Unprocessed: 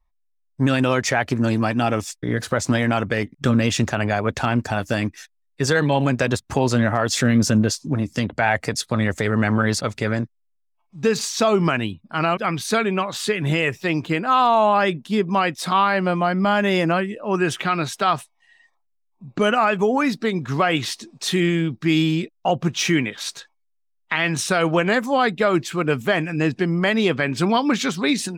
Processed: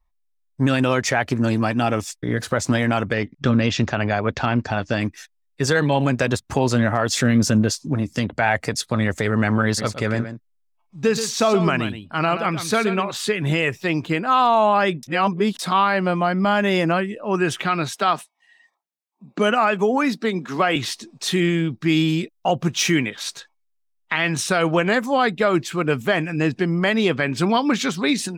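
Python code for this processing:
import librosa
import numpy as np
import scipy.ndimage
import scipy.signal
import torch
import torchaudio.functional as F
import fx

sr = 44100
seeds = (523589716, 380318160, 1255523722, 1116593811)

y = fx.lowpass(x, sr, hz=5700.0, slope=24, at=(3.13, 5.01))
y = fx.echo_single(y, sr, ms=126, db=-10.0, at=(9.77, 13.1), fade=0.02)
y = fx.steep_highpass(y, sr, hz=170.0, slope=36, at=(17.95, 20.76))
y = fx.high_shelf(y, sr, hz=6300.0, db=6.0, at=(22.08, 23.1))
y = fx.edit(y, sr, fx.reverse_span(start_s=15.03, length_s=0.56), tone=tone)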